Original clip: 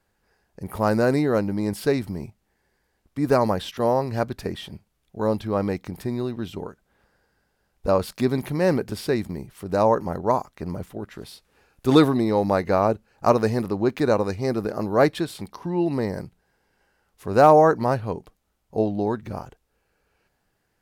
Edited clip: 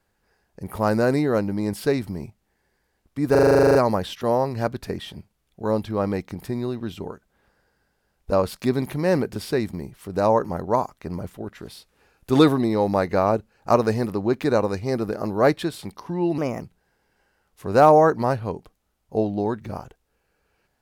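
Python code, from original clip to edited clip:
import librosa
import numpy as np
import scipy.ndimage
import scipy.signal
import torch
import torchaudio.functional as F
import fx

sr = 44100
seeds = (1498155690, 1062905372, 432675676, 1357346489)

y = fx.edit(x, sr, fx.stutter(start_s=3.31, slice_s=0.04, count=12),
    fx.speed_span(start_s=15.94, length_s=0.29, speed=1.22), tone=tone)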